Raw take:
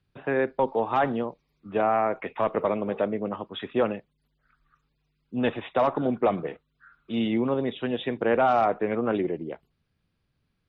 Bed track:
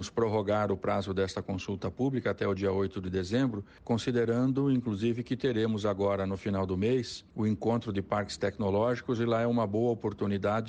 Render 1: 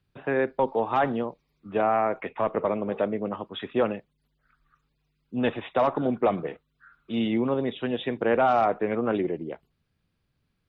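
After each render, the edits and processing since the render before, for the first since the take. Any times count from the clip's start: 2.29–2.92 s: distance through air 200 m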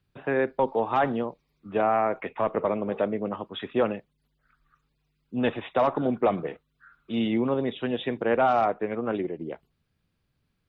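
8.22–9.40 s: upward expansion, over -31 dBFS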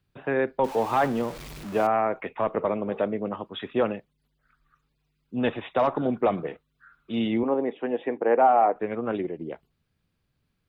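0.64–1.87 s: jump at every zero crossing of -34.5 dBFS; 7.43–8.76 s: cabinet simulation 290–2200 Hz, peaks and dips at 290 Hz +5 dB, 470 Hz +4 dB, 810 Hz +6 dB, 1.4 kHz -4 dB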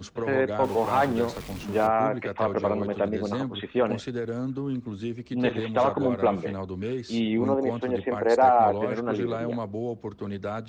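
add bed track -3 dB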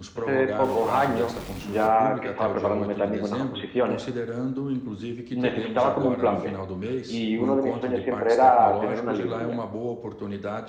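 plate-style reverb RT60 0.83 s, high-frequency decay 0.65×, DRR 5.5 dB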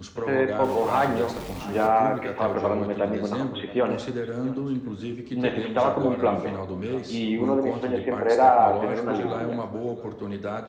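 delay 676 ms -18.5 dB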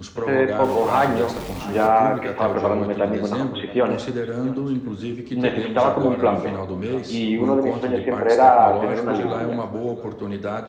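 trim +4 dB

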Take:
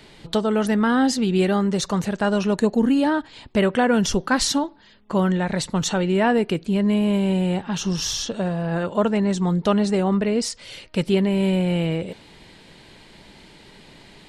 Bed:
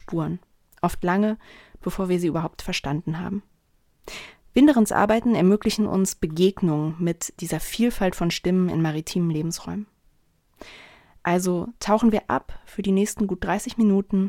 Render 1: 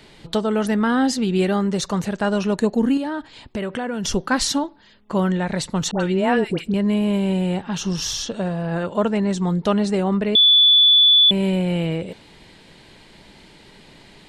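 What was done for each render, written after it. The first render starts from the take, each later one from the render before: 2.97–4.05 s: compression 4:1, threshold -23 dBFS; 5.91–6.74 s: phase dispersion highs, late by 92 ms, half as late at 1.1 kHz; 10.35–11.31 s: bleep 3.46 kHz -9.5 dBFS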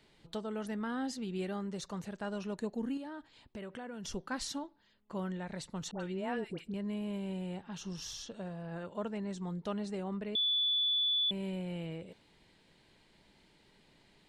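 trim -18 dB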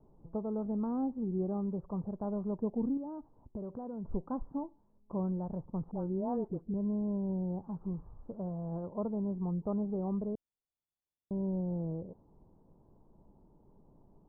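steep low-pass 1.1 kHz 48 dB/octave; tilt EQ -2 dB/octave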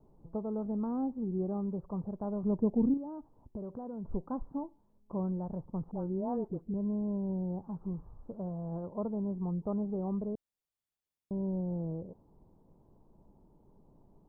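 2.43–2.94 s: bass shelf 460 Hz +7 dB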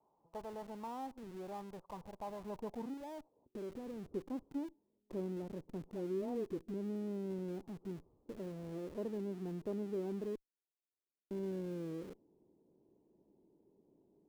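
band-pass sweep 930 Hz -> 360 Hz, 2.90–3.58 s; in parallel at -10.5 dB: Schmitt trigger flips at -56 dBFS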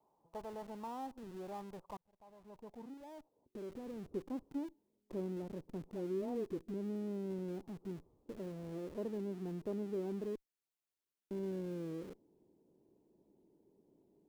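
0.79–1.42 s: band-stop 2.2 kHz; 1.97–3.97 s: fade in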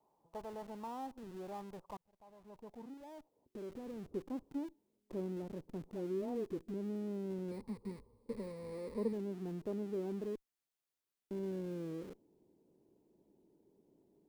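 7.51–9.13 s: rippled EQ curve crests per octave 0.93, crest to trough 14 dB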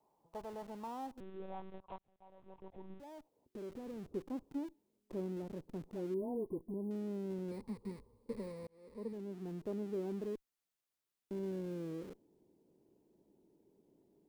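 1.20–3.00 s: monotone LPC vocoder at 8 kHz 190 Hz; 6.14–6.91 s: brick-wall FIR band-stop 1.1–8.8 kHz; 8.67–10.00 s: fade in equal-power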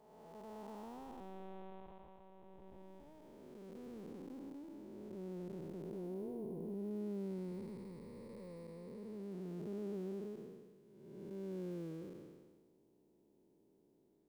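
spectral blur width 610 ms

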